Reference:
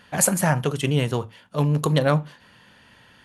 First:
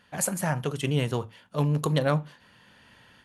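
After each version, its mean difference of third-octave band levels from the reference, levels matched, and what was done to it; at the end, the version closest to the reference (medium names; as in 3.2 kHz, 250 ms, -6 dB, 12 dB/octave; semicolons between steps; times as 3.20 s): 1.0 dB: level rider gain up to 6 dB; trim -8.5 dB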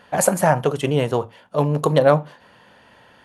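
3.0 dB: peaking EQ 640 Hz +11 dB 2 oct; trim -2.5 dB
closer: first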